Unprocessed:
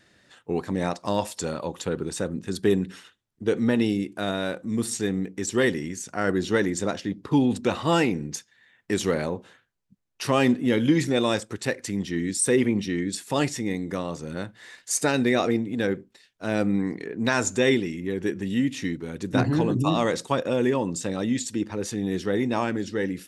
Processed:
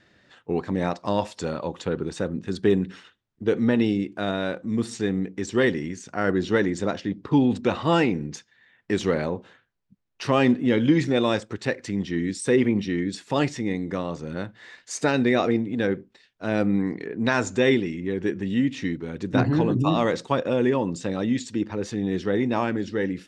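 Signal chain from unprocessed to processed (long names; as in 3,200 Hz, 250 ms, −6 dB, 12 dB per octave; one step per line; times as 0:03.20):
high-frequency loss of the air 110 metres
level +1.5 dB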